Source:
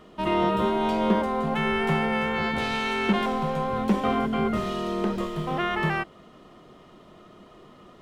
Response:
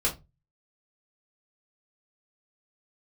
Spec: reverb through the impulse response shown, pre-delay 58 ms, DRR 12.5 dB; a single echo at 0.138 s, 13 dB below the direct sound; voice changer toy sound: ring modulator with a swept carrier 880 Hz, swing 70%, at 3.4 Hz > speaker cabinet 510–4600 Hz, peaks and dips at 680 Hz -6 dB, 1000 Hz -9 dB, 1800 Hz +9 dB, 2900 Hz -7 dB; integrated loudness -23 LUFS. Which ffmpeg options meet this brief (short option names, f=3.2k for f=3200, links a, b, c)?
-filter_complex "[0:a]aecho=1:1:138:0.224,asplit=2[a][b];[1:a]atrim=start_sample=2205,adelay=58[c];[b][c]afir=irnorm=-1:irlink=0,volume=-21dB[d];[a][d]amix=inputs=2:normalize=0,aeval=exprs='val(0)*sin(2*PI*880*n/s+880*0.7/3.4*sin(2*PI*3.4*n/s))':c=same,highpass=510,equalizer=f=680:t=q:w=4:g=-6,equalizer=f=1k:t=q:w=4:g=-9,equalizer=f=1.8k:t=q:w=4:g=9,equalizer=f=2.9k:t=q:w=4:g=-7,lowpass=f=4.6k:w=0.5412,lowpass=f=4.6k:w=1.3066,volume=3.5dB"